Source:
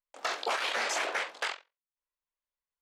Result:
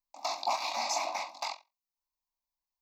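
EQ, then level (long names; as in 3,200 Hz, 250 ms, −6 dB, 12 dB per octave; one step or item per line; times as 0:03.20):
phaser with its sweep stopped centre 470 Hz, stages 6
phaser with its sweep stopped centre 2,100 Hz, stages 8
+5.0 dB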